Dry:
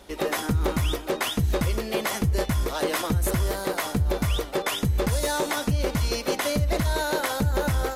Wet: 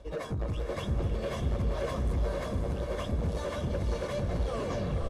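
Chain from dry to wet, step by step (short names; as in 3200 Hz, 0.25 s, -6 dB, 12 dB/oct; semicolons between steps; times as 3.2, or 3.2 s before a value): tape stop at the end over 1.10 s; LPF 8100 Hz 12 dB/oct; tilt shelf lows +7.5 dB, about 810 Hz; notch 390 Hz, Q 12; comb 1.8 ms, depth 61%; de-hum 63.68 Hz, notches 13; plain phase-vocoder stretch 0.64×; soft clip -23 dBFS, distortion -7 dB; on a send: diffused feedback echo 0.546 s, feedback 40%, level -3 dB; on the sum: gain -5.5 dB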